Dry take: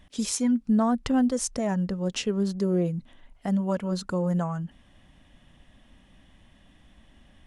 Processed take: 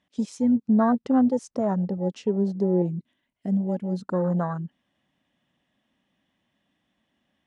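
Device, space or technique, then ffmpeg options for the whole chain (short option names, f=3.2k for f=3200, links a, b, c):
over-cleaned archive recording: -filter_complex "[0:a]asettb=1/sr,asplit=3[a][b][c];[a]atrim=end=2.824[d];[b]atrim=start=2.82:end=4,asetpts=PTS-STARTPTS,afade=t=in:d=0.004:c=qsin,afade=t=out:st=1.176:d=0.004:c=qsin,equalizer=f=500:t=o:w=0.33:g=-9,equalizer=f=800:t=o:w=0.33:g=-11,equalizer=f=1.25k:t=o:w=0.33:g=-7,equalizer=f=10k:t=o:w=0.33:g=6[e];[c]atrim=start=3.996[f];[d][e]acrossfade=d=0.004:c1=hsin:c2=qsin[g];[g][f]acrossfade=d=0.004:c1=qsin:c2=hsin,highpass=170,lowpass=7.6k,afwtdn=0.0251,volume=3.5dB"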